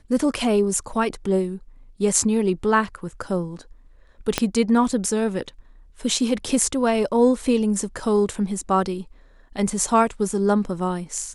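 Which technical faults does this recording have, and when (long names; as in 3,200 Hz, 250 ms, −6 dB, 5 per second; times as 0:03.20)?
0:04.38: click −4 dBFS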